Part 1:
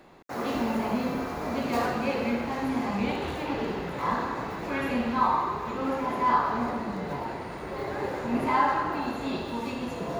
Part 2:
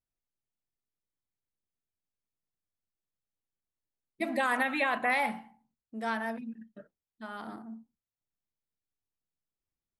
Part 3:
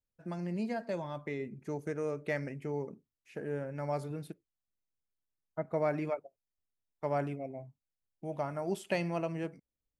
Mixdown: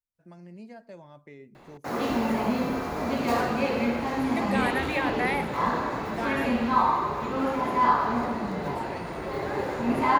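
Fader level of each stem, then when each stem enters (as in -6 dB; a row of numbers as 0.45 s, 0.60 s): +2.0 dB, -0.5 dB, -9.5 dB; 1.55 s, 0.15 s, 0.00 s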